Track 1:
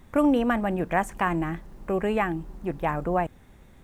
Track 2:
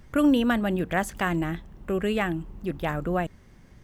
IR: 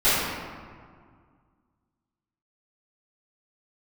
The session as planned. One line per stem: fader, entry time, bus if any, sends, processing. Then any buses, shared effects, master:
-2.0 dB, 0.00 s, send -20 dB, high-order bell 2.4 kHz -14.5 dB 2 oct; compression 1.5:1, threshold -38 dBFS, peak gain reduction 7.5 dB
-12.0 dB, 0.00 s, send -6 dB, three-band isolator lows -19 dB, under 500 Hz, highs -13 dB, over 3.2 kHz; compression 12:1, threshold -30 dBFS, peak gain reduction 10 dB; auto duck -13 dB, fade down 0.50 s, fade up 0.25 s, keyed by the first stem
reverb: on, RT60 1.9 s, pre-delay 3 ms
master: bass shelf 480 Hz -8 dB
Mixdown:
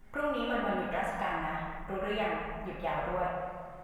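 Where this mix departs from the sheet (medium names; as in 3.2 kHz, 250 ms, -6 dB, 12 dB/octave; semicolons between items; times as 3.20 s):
stem 1 -2.0 dB -> -9.5 dB; master: missing bass shelf 480 Hz -8 dB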